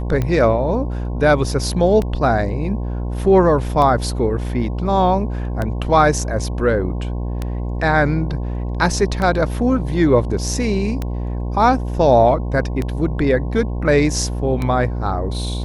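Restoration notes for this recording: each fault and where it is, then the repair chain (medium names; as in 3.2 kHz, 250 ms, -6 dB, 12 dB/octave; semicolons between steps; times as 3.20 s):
buzz 60 Hz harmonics 18 -23 dBFS
tick 33 1/3 rpm -10 dBFS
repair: de-click; de-hum 60 Hz, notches 18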